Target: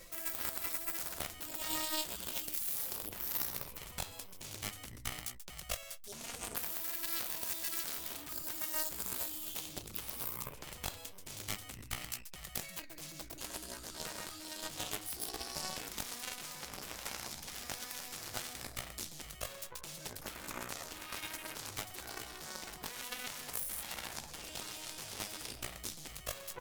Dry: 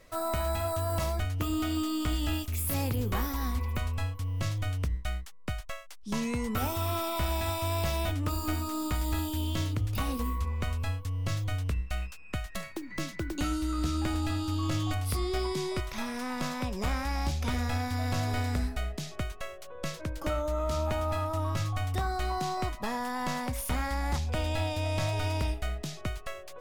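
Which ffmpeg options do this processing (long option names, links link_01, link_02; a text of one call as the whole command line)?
ffmpeg -i in.wav -filter_complex "[0:a]aecho=1:1:5.8:0.87,areverse,acompressor=threshold=-35dB:ratio=16,areverse,alimiter=level_in=14dB:limit=-24dB:level=0:latency=1:release=459,volume=-14dB,asplit=2[link_01][link_02];[link_02]aecho=0:1:134:0.596[link_03];[link_01][link_03]amix=inputs=2:normalize=0,aeval=exprs='0.0211*(cos(1*acos(clip(val(0)/0.0211,-1,1)))-cos(1*PI/2))+0.00944*(cos(3*acos(clip(val(0)/0.0211,-1,1)))-cos(3*PI/2))':channel_layout=same,crystalizer=i=3:c=0,volume=9.5dB" out.wav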